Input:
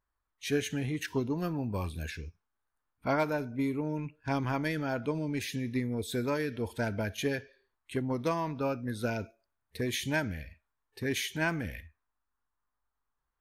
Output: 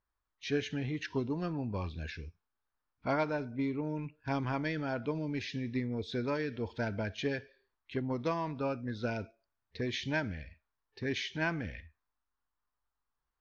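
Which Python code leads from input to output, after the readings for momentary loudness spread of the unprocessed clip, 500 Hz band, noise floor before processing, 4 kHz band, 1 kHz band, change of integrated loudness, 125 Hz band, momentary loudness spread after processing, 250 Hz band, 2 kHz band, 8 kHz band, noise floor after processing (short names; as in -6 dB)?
8 LU, -2.5 dB, -84 dBFS, -2.5 dB, -2.5 dB, -2.5 dB, -2.5 dB, 8 LU, -2.5 dB, -2.5 dB, -11.5 dB, under -85 dBFS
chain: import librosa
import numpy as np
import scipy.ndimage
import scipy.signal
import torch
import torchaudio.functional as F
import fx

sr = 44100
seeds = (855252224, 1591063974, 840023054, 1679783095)

y = scipy.signal.sosfilt(scipy.signal.butter(8, 5700.0, 'lowpass', fs=sr, output='sos'), x)
y = y * librosa.db_to_amplitude(-2.5)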